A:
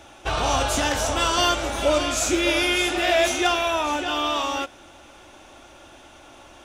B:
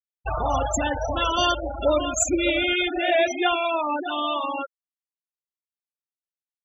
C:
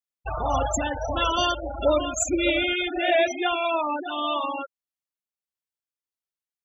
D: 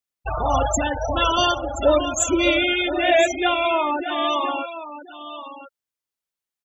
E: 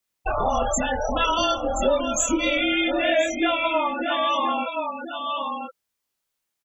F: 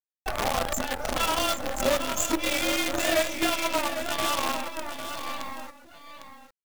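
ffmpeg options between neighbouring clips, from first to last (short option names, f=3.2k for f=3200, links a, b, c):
-af "highshelf=f=9.8k:g=-5.5,afftfilt=real='re*gte(hypot(re,im),0.141)':imag='im*gte(hypot(re,im),0.141)':win_size=1024:overlap=0.75,aexciter=amount=13.4:drive=7.6:freq=8k"
-af "tremolo=f=1.6:d=0.31"
-af "aecho=1:1:1025:0.224,volume=4dB"
-filter_complex "[0:a]acompressor=threshold=-31dB:ratio=3,afreqshift=-28,asplit=2[a][b];[b]adelay=24,volume=-2.5dB[c];[a][c]amix=inputs=2:normalize=0,volume=6.5dB"
-af "acrusher=bits=4:dc=4:mix=0:aa=0.000001,aecho=1:1:802:0.335,volume=-4.5dB"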